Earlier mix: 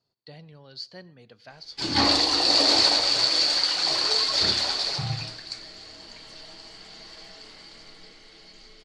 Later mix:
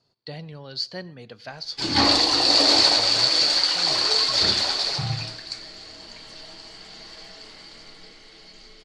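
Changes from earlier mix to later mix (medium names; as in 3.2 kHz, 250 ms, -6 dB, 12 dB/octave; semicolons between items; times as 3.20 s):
speech +9.0 dB; background: send on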